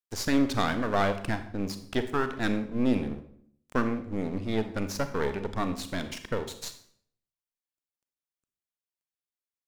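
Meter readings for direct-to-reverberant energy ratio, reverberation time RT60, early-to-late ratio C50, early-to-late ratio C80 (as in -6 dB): 9.0 dB, 0.60 s, 11.5 dB, 14.0 dB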